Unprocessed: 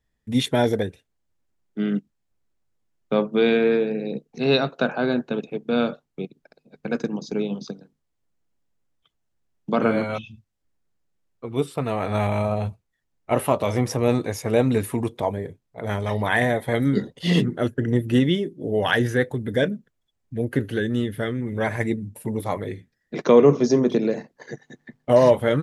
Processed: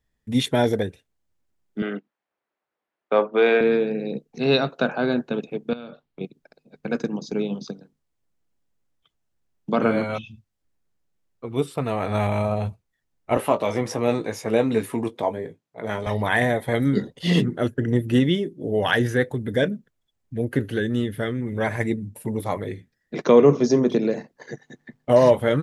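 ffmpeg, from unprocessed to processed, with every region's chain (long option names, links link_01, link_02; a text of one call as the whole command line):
ffmpeg -i in.wav -filter_complex "[0:a]asettb=1/sr,asplit=3[link_01][link_02][link_03];[link_01]atrim=end=1.824[link_04];[link_02]atrim=start=1.82:end=3.61,asetpts=PTS-STARTPTS,afade=type=in:duration=0.004:curve=qsin,afade=type=out:start_time=1.786:duration=0.004:curve=qsin,highpass=530,lowpass=2200,acontrast=74[link_05];[link_03]atrim=start=3.606[link_06];[link_04][link_05]acrossfade=duration=0.004:curve1=hsin:curve2=qsin[link_07];[link_07][link_06]acrossfade=duration=0.004:curve1=qsin:curve2=hsin,asettb=1/sr,asplit=3[link_08][link_09][link_10];[link_08]atrim=end=5.734[link_11];[link_09]atrim=start=5.73:end=6.21,asetpts=PTS-STARTPTS,afade=type=in:duration=0.004:curve=qsin,afade=type=out:start_time=0.476:duration=0.004:curve=qsin,acompressor=threshold=-35dB:ratio=6:attack=3.2:release=140:knee=1:detection=peak,highshelf=frequency=5000:width_type=q:width=1.5:gain=-8[link_12];[link_10]atrim=start=6.206[link_13];[link_11][link_12]acrossfade=duration=0.004:curve1=hsin:curve2=qsin[link_14];[link_14][link_13]acrossfade=duration=0.004:curve1=qsin:curve2=hsin,asettb=1/sr,asplit=3[link_15][link_16][link_17];[link_15]atrim=end=13.374[link_18];[link_16]atrim=start=13.37:end=16.07,asetpts=PTS-STARTPTS,afade=type=in:duration=0.004:curve=qsin,afade=type=out:start_time=2.696:duration=0.004:curve=qsin,highpass=180,highshelf=frequency=9800:gain=-10,asplit=2[link_19][link_20];[link_20]adelay=18,volume=-9dB[link_21];[link_19][link_21]amix=inputs=2:normalize=0,atrim=end_sample=119070[link_22];[link_17]atrim=start=16.066[link_23];[link_18][link_22]acrossfade=duration=0.004:curve1=hsin:curve2=qsin[link_24];[link_24][link_23]acrossfade=duration=0.004:curve1=qsin:curve2=hsin" out.wav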